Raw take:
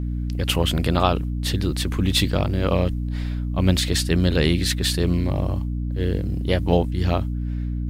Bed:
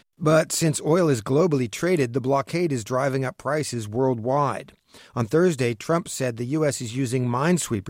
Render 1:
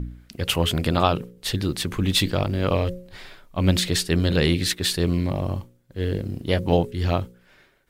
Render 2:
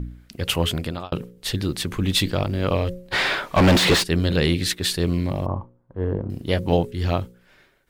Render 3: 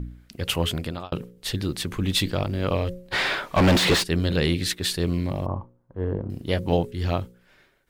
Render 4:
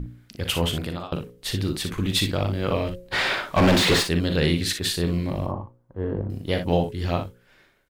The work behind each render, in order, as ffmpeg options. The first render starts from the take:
-af "bandreject=f=60:t=h:w=4,bandreject=f=120:t=h:w=4,bandreject=f=180:t=h:w=4,bandreject=f=240:t=h:w=4,bandreject=f=300:t=h:w=4,bandreject=f=360:t=h:w=4,bandreject=f=420:t=h:w=4,bandreject=f=480:t=h:w=4,bandreject=f=540:t=h:w=4"
-filter_complex "[0:a]asplit=3[s0][s1][s2];[s0]afade=t=out:st=3.11:d=0.02[s3];[s1]asplit=2[s4][s5];[s5]highpass=f=720:p=1,volume=56.2,asoftclip=type=tanh:threshold=0.447[s6];[s4][s6]amix=inputs=2:normalize=0,lowpass=f=2100:p=1,volume=0.501,afade=t=in:st=3.11:d=0.02,afade=t=out:st=4.02:d=0.02[s7];[s2]afade=t=in:st=4.02:d=0.02[s8];[s3][s7][s8]amix=inputs=3:normalize=0,asettb=1/sr,asplit=3[s9][s10][s11];[s9]atrim=end=5.464[s12];[s10]atrim=start=5.46:end=6.3,asetpts=PTS-STARTPTS,afade=t=in:d=0.004:c=qsin,afade=t=out:st=0.836:d=0.004:c=qsin,lowpass=f=1000:t=q:w=3.1[s13];[s11]atrim=start=6.296[s14];[s12][s13]acrossfade=d=0.004:c1=hsin:c2=qsin[s15];[s15][s14]acrossfade=d=0.004:c1=qsin:c2=hsin,asplit=2[s16][s17];[s16]atrim=end=1.12,asetpts=PTS-STARTPTS,afade=t=out:st=0.66:d=0.46[s18];[s17]atrim=start=1.12,asetpts=PTS-STARTPTS,afade=t=in:d=0.004:c=hsin[s19];[s18][s19]concat=n=2:v=0:a=1"
-af "volume=0.75"
-af "aecho=1:1:40|59:0.316|0.376"

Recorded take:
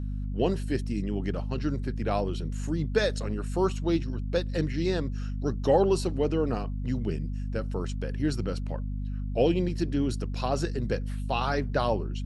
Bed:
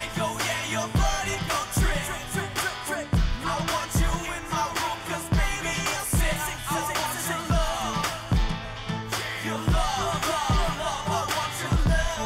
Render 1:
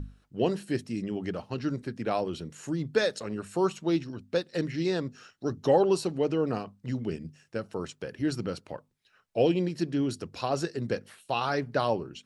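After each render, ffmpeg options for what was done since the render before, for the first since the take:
-af "bandreject=f=50:t=h:w=6,bandreject=f=100:t=h:w=6,bandreject=f=150:t=h:w=6,bandreject=f=200:t=h:w=6,bandreject=f=250:t=h:w=6"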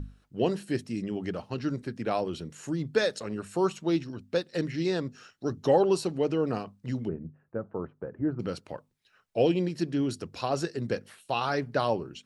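-filter_complex "[0:a]asplit=3[s0][s1][s2];[s0]afade=t=out:st=7.07:d=0.02[s3];[s1]lowpass=f=1300:w=0.5412,lowpass=f=1300:w=1.3066,afade=t=in:st=7.07:d=0.02,afade=t=out:st=8.39:d=0.02[s4];[s2]afade=t=in:st=8.39:d=0.02[s5];[s3][s4][s5]amix=inputs=3:normalize=0"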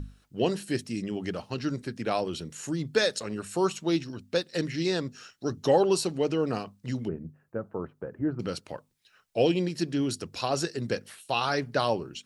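-af "highshelf=f=2700:g=8"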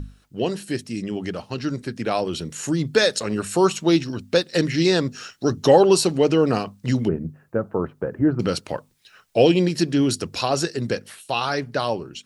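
-filter_complex "[0:a]asplit=2[s0][s1];[s1]alimiter=limit=0.075:level=0:latency=1:release=371,volume=0.708[s2];[s0][s2]amix=inputs=2:normalize=0,dynaudnorm=f=470:g=11:m=2.37"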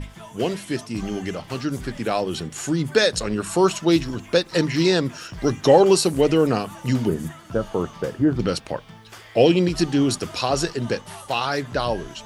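-filter_complex "[1:a]volume=0.2[s0];[0:a][s0]amix=inputs=2:normalize=0"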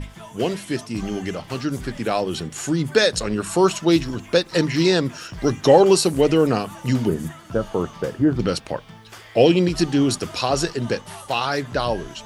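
-af "volume=1.12"

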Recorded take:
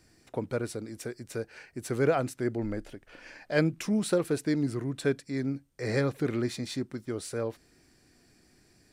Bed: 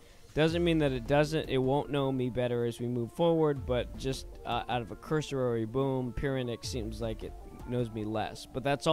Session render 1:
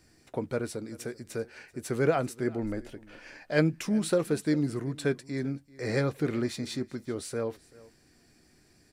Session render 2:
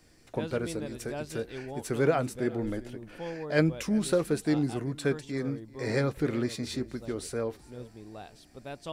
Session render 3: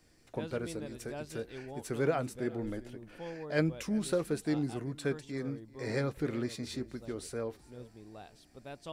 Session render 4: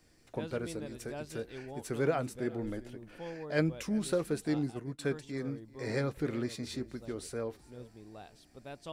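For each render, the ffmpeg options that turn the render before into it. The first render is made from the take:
-filter_complex "[0:a]asplit=2[s0][s1];[s1]adelay=13,volume=0.224[s2];[s0][s2]amix=inputs=2:normalize=0,aecho=1:1:387:0.0841"
-filter_complex "[1:a]volume=0.266[s0];[0:a][s0]amix=inputs=2:normalize=0"
-af "volume=0.562"
-filter_complex "[0:a]asettb=1/sr,asplit=3[s0][s1][s2];[s0]atrim=end=4.484[s3];[s1]atrim=start=4.48:end=4.99,asetpts=PTS-STARTPTS,afade=t=in:d=0.004:c=qsin,afade=t=out:st=0.506:d=0.004:c=qsin,agate=range=0.0224:threshold=0.0178:ratio=3:release=100:detection=peak[s4];[s2]atrim=start=4.986[s5];[s3][s4]acrossfade=d=0.004:c1=hsin:c2=qsin[s6];[s6][s5]acrossfade=d=0.004:c1=qsin:c2=hsin"

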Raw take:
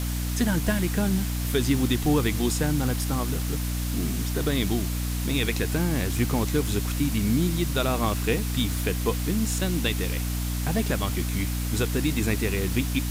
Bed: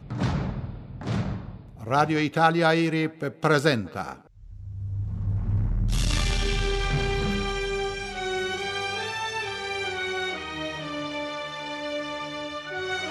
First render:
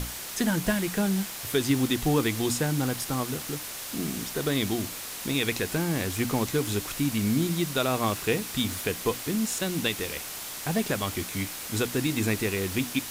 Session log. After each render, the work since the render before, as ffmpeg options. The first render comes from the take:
-af "bandreject=f=60:t=h:w=6,bandreject=f=120:t=h:w=6,bandreject=f=180:t=h:w=6,bandreject=f=240:t=h:w=6,bandreject=f=300:t=h:w=6"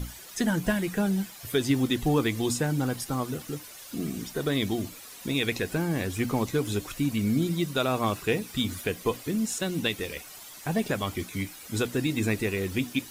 -af "afftdn=nr=12:nf=-38"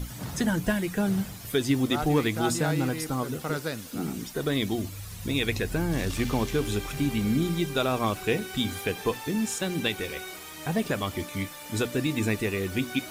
-filter_complex "[1:a]volume=0.282[s0];[0:a][s0]amix=inputs=2:normalize=0"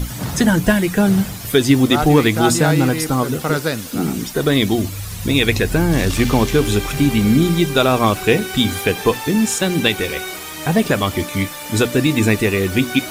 -af "volume=3.76,alimiter=limit=0.891:level=0:latency=1"

